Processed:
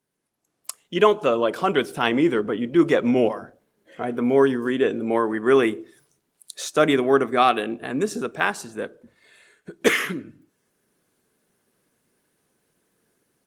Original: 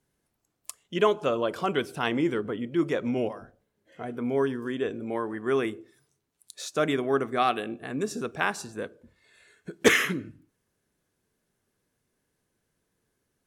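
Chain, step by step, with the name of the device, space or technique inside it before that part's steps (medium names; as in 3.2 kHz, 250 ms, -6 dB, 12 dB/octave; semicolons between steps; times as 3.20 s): video call (high-pass 160 Hz 12 dB/octave; level rider gain up to 12 dB; trim -2 dB; Opus 24 kbps 48 kHz)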